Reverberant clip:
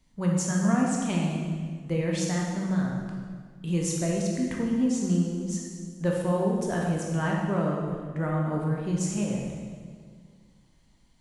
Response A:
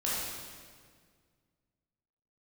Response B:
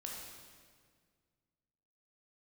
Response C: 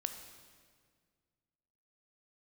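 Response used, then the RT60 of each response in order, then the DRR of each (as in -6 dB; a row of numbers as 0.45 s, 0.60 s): B; 1.8 s, 1.8 s, 1.8 s; -8.0 dB, -2.0 dB, 6.5 dB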